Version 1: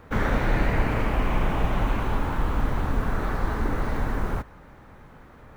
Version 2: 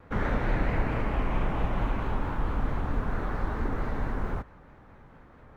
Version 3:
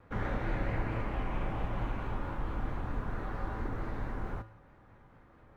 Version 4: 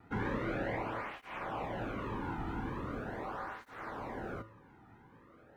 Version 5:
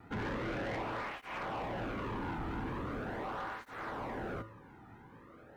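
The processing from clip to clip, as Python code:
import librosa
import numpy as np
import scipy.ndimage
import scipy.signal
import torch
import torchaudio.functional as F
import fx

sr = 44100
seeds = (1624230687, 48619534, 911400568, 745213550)

y1 = fx.lowpass(x, sr, hz=2900.0, slope=6)
y1 = fx.vibrato(y1, sr, rate_hz=4.5, depth_cents=76.0)
y1 = y1 * 10.0 ** (-4.0 / 20.0)
y2 = fx.comb_fb(y1, sr, f0_hz=110.0, decay_s=0.59, harmonics='odd', damping=0.0, mix_pct=70)
y2 = y2 * 10.0 ** (3.0 / 20.0)
y3 = fx.flanger_cancel(y2, sr, hz=0.41, depth_ms=1.9)
y3 = y3 * 10.0 ** (3.5 / 20.0)
y4 = 10.0 ** (-38.0 / 20.0) * np.tanh(y3 / 10.0 ** (-38.0 / 20.0))
y4 = y4 * 10.0 ** (4.0 / 20.0)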